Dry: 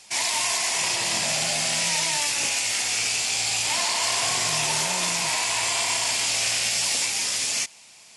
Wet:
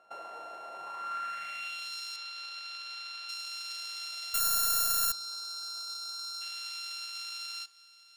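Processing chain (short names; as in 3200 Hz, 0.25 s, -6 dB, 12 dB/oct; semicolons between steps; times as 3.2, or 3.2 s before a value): sample sorter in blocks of 32 samples; 2.16–3.29 three-band isolator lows -23 dB, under 190 Hz, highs -15 dB, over 4300 Hz; 4.4–6.41 spectral gain 1600–3600 Hz -20 dB; compressor, threshold -29 dBFS, peak gain reduction 8.5 dB; band-pass sweep 700 Hz -> 4400 Hz, 0.72–1.97; on a send at -14 dB: reverb RT60 0.60 s, pre-delay 3 ms; 4.34–5.12 on the sum: careless resampling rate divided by 8×, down none, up zero stuff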